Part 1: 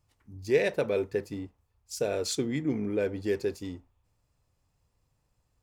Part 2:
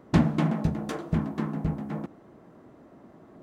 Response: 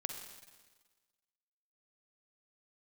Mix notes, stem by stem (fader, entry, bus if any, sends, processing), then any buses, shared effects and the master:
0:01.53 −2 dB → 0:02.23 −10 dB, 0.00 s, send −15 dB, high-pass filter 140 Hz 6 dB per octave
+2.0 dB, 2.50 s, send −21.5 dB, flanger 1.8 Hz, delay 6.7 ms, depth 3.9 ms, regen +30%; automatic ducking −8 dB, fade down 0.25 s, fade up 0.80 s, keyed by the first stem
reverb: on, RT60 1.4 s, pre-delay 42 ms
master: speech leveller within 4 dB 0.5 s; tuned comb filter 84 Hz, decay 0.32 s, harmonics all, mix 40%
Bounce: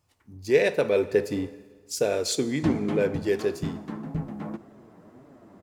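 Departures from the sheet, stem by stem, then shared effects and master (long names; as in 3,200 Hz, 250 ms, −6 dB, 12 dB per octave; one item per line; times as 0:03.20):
stem 1 −2.0 dB → +9.0 dB
reverb return +7.0 dB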